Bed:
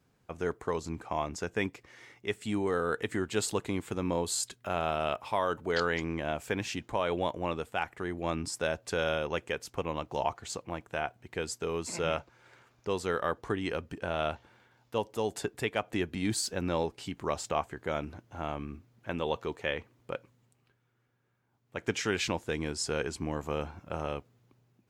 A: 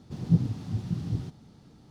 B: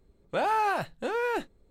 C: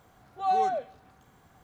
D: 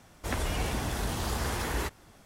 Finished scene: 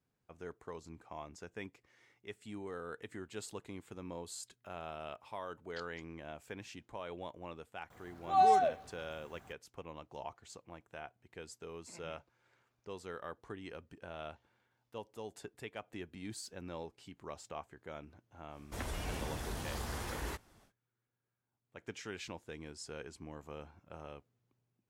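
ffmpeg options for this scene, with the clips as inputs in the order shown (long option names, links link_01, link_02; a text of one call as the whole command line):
ffmpeg -i bed.wav -i cue0.wav -i cue1.wav -i cue2.wav -i cue3.wav -filter_complex "[0:a]volume=-14dB[link_01];[3:a]atrim=end=1.63,asetpts=PTS-STARTPTS,volume=-0.5dB,afade=type=in:duration=0.004:curve=hsin,afade=type=out:start_time=1.626:duration=0.004:curve=hsin,adelay=7900[link_02];[4:a]atrim=end=2.25,asetpts=PTS-STARTPTS,volume=-9dB,afade=type=in:duration=0.1,afade=type=out:start_time=2.15:duration=0.1,adelay=18480[link_03];[link_01][link_02][link_03]amix=inputs=3:normalize=0" out.wav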